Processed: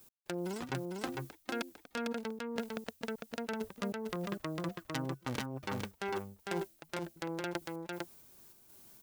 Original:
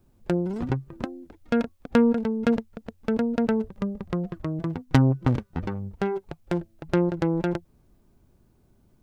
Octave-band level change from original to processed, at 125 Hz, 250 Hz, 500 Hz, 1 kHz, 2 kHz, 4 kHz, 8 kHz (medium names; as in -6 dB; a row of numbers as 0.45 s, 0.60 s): -17.0 dB, -15.0 dB, -11.5 dB, -7.5 dB, -5.0 dB, -1.5 dB, no reading